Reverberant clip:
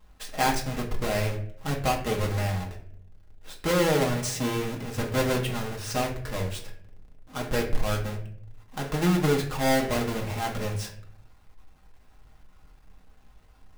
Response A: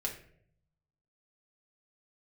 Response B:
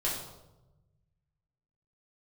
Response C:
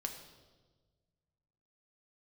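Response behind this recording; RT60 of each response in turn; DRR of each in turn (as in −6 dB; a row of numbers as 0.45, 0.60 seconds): A; non-exponential decay, 1.0 s, 1.4 s; −1.5, −6.5, 3.5 decibels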